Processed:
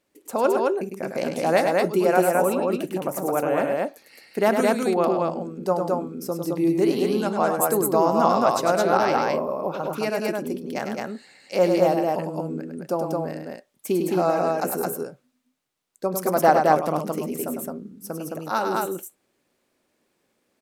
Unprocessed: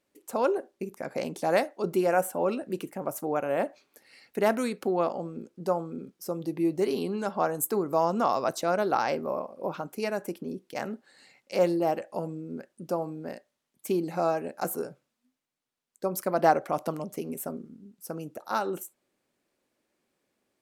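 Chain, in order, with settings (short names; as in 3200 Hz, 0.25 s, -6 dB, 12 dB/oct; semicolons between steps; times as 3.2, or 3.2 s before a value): loudspeakers at several distances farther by 35 m -6 dB, 74 m -2 dB; gain +4 dB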